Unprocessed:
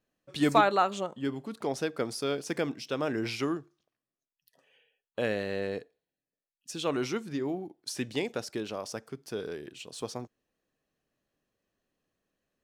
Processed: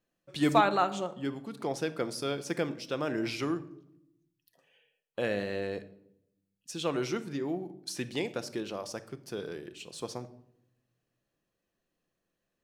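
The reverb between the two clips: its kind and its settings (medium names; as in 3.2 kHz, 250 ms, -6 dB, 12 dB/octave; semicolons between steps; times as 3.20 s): simulated room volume 2000 m³, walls furnished, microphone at 0.81 m; trim -1.5 dB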